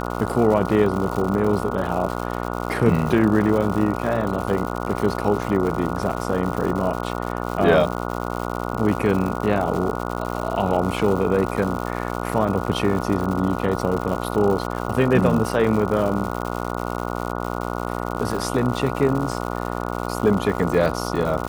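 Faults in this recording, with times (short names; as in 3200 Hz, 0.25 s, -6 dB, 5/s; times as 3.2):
buzz 60 Hz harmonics 24 -27 dBFS
crackle 180/s -27 dBFS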